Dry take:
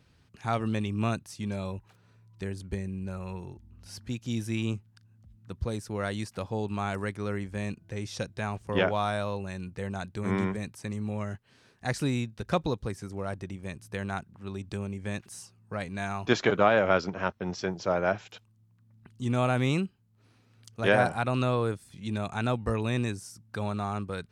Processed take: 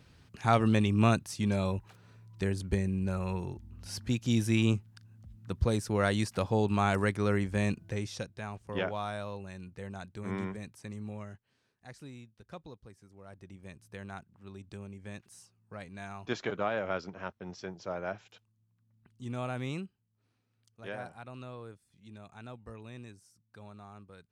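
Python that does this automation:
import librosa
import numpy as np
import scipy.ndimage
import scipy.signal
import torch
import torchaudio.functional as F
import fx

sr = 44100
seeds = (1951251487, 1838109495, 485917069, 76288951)

y = fx.gain(x, sr, db=fx.line((7.84, 4.0), (8.33, -7.5), (11.08, -7.5), (11.91, -19.0), (13.17, -19.0), (13.57, -10.0), (19.78, -10.0), (20.81, -18.0)))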